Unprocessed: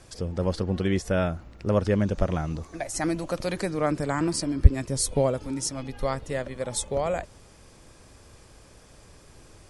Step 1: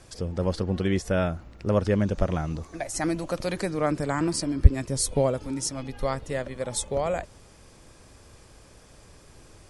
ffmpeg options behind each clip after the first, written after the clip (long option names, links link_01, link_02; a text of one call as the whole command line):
ffmpeg -i in.wav -af anull out.wav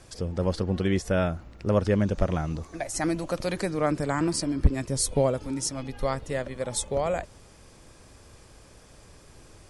ffmpeg -i in.wav -af "asoftclip=type=hard:threshold=-11dB" out.wav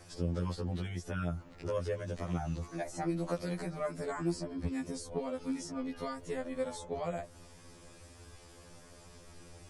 ffmpeg -i in.wav -filter_complex "[0:a]acrossover=split=94|1500|7000[link_01][link_02][link_03][link_04];[link_01]acompressor=threshold=-48dB:ratio=4[link_05];[link_02]acompressor=threshold=-31dB:ratio=4[link_06];[link_03]acompressor=threshold=-49dB:ratio=4[link_07];[link_04]acompressor=threshold=-56dB:ratio=4[link_08];[link_05][link_06][link_07][link_08]amix=inputs=4:normalize=0,afftfilt=real='re*2*eq(mod(b,4),0)':imag='im*2*eq(mod(b,4),0)':win_size=2048:overlap=0.75" out.wav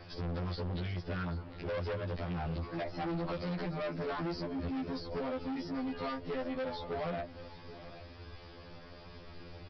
ffmpeg -i in.wav -af "aresample=11025,asoftclip=type=hard:threshold=-38dB,aresample=44100,aecho=1:1:783:0.158,volume=4.5dB" out.wav